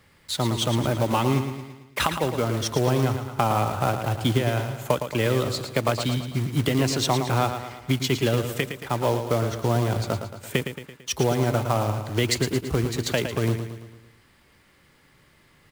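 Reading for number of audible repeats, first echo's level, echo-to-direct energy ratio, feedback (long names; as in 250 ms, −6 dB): 5, −8.5 dB, −7.0 dB, 51%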